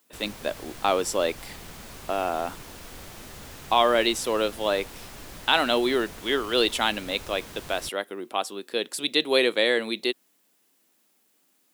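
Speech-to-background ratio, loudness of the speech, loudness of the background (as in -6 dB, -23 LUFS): 16.5 dB, -25.5 LUFS, -42.0 LUFS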